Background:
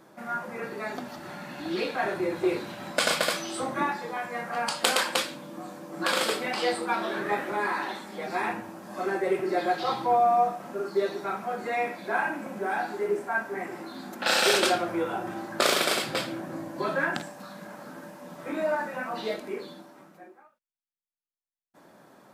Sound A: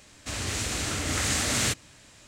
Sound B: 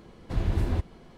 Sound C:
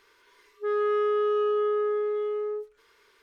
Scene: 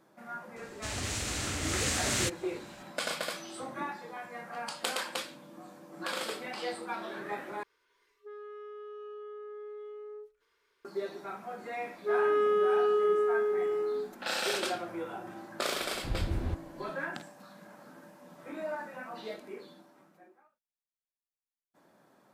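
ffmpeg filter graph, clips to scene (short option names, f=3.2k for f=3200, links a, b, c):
-filter_complex "[3:a]asplit=2[a][b];[0:a]volume=-9.5dB[c];[a]alimiter=level_in=3.5dB:limit=-24dB:level=0:latency=1:release=71,volume=-3.5dB[d];[b]dynaudnorm=f=270:g=3:m=11.5dB[e];[c]asplit=2[f][g];[f]atrim=end=7.634[h];[d]atrim=end=3.22,asetpts=PTS-STARTPTS,volume=-12.5dB[i];[g]atrim=start=10.846[j];[1:a]atrim=end=2.27,asetpts=PTS-STARTPTS,volume=-4.5dB,afade=t=in:d=0.004:c=hsin,afade=t=out:st=2.266:d=0.004:c=hsin,adelay=560[k];[e]atrim=end=3.22,asetpts=PTS-STARTPTS,volume=-13dB,afade=t=in:d=0.004:c=hsin,afade=t=out:st=3.216:d=0.004:c=hsin,adelay=11430[l];[2:a]atrim=end=1.17,asetpts=PTS-STARTPTS,volume=-6.5dB,afade=t=in:d=0.004:c=hsin,afade=t=out:st=1.166:d=0.004:c=hsin,adelay=15740[m];[h][i]acrossfade=d=0.004:c1=hsin:c2=hsin[n];[n][j]acrossfade=d=0.004:c1=hsin:c2=hsin[o];[o][k][l][m]amix=inputs=4:normalize=0"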